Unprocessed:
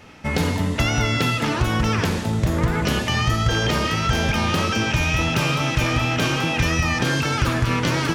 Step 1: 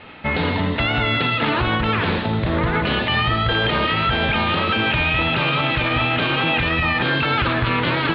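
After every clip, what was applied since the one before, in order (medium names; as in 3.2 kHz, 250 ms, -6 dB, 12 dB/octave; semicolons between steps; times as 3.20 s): steep low-pass 4.1 kHz 72 dB/octave; bass shelf 300 Hz -7.5 dB; peak limiter -17 dBFS, peak gain reduction 6.5 dB; trim +6.5 dB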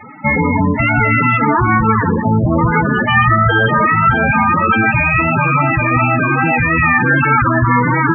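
ten-band graphic EQ 125 Hz +6 dB, 250 Hz +6 dB, 500 Hz +3 dB, 1 kHz +8 dB, 2 kHz +8 dB, 4 kHz -7 dB; loudest bins only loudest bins 16; reverse; upward compressor, threshold -25 dBFS; reverse; trim +2 dB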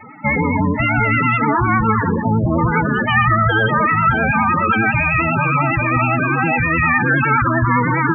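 vibrato 9.8 Hz 47 cents; trim -3 dB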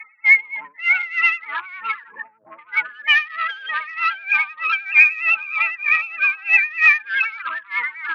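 in parallel at -9 dB: sine folder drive 4 dB, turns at -4 dBFS; on the sum: resonant high-pass 2.3 kHz, resonance Q 3.2; logarithmic tremolo 3.2 Hz, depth 21 dB; trim -3.5 dB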